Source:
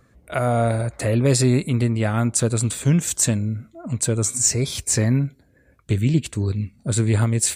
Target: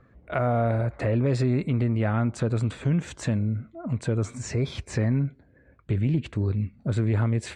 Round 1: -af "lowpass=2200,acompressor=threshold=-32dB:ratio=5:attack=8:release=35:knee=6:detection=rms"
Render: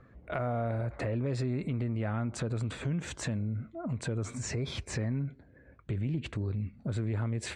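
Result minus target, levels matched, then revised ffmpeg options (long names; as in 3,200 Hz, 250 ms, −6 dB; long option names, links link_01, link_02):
downward compressor: peak gain reduction +9 dB
-af "lowpass=2200,acompressor=threshold=-21dB:ratio=5:attack=8:release=35:knee=6:detection=rms"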